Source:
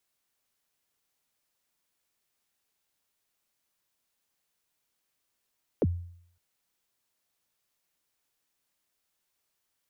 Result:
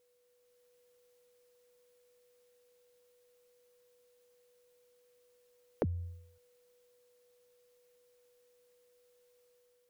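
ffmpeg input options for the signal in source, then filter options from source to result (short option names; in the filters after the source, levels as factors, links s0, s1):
-f lavfi -i "aevalsrc='0.112*pow(10,-3*t/0.64)*sin(2*PI*(580*0.039/log(87/580)*(exp(log(87/580)*min(t,0.039)/0.039)-1)+87*max(t-0.039,0)))':d=0.56:s=44100"
-af "acompressor=threshold=0.02:ratio=10,aeval=exprs='val(0)+0.000316*sin(2*PI*490*n/s)':c=same,dynaudnorm=f=200:g=5:m=1.5"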